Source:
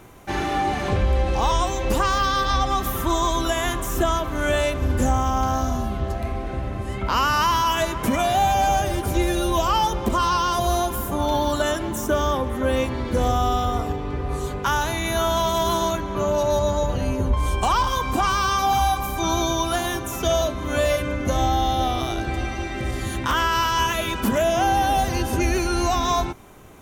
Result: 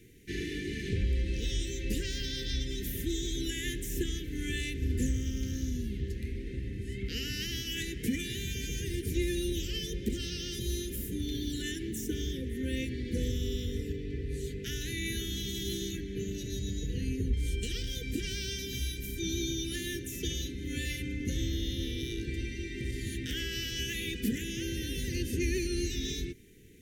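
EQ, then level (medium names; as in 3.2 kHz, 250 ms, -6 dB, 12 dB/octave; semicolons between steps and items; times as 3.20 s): Chebyshev band-stop 470–1800 Hz, order 4; Butterworth band-stop 650 Hz, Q 2; -8.0 dB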